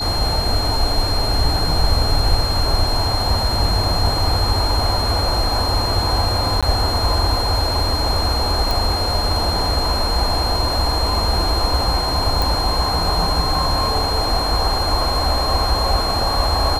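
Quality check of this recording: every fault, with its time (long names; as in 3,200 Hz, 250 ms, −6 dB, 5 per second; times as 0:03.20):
whistle 4,200 Hz −22 dBFS
0:06.61–0:06.63: drop-out 16 ms
0:08.71: click
0:12.42: click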